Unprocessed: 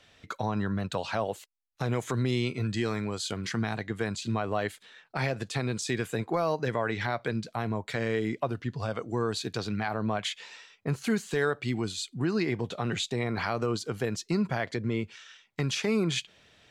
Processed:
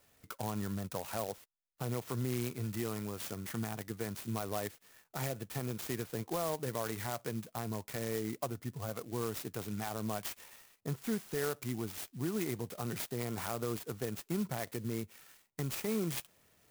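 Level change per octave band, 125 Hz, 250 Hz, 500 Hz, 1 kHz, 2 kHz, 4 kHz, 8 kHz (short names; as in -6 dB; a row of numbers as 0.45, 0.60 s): -7.5, -7.5, -8.0, -8.5, -12.0, -11.0, -3.0 dB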